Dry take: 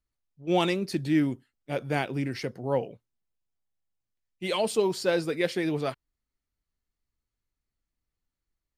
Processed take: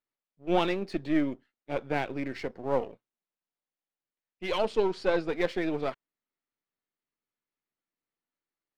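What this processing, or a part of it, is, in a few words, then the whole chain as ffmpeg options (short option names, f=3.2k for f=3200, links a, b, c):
crystal radio: -filter_complex "[0:a]highpass=260,lowpass=3.1k,aeval=exprs='if(lt(val(0),0),0.447*val(0),val(0))':c=same,asettb=1/sr,asplit=3[a][b][c];[a]atrim=end=4.654[d];[b]atrim=start=4.65:end=5.28,asetpts=PTS-STARTPTS,afade=t=in:d=0.004:c=qsin,afade=t=out:st=0.626:d=0.004:c=qsin,lowpass=8.6k[e];[c]atrim=start=5.276[f];[d][e]acrossfade=d=0.004:c1=hsin:c2=qsin[g];[g][f]acrossfade=d=0.004:c1=qsin:c2=hsin,volume=2dB"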